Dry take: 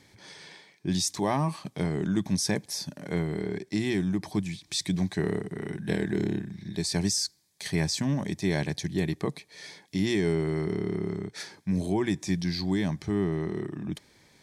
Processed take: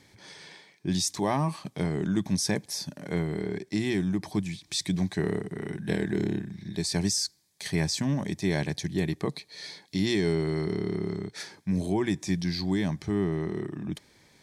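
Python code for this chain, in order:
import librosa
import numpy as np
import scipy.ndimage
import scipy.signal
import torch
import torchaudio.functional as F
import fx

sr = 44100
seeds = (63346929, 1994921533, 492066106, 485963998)

y = fx.peak_eq(x, sr, hz=4200.0, db=8.5, octaves=0.35, at=(9.29, 11.34))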